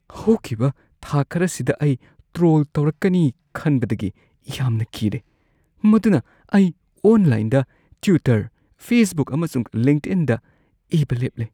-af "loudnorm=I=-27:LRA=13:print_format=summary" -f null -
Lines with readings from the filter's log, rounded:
Input Integrated:    -20.3 LUFS
Input True Peak:      -3.7 dBTP
Input LRA:             2.5 LU
Input Threshold:     -30.9 LUFS